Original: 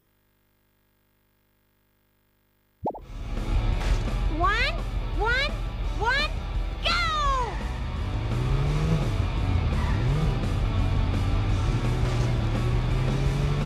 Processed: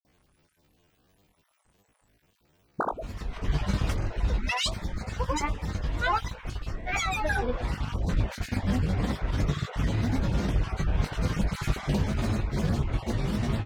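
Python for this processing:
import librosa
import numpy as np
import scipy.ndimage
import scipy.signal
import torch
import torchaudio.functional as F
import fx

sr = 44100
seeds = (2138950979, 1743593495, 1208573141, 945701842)

y = fx.spec_dropout(x, sr, seeds[0], share_pct=23)
y = fx.rider(y, sr, range_db=3, speed_s=0.5)
y = fx.granulator(y, sr, seeds[1], grain_ms=100.0, per_s=20.0, spray_ms=100.0, spread_st=12)
y = fx.doubler(y, sr, ms=20.0, db=-9.5)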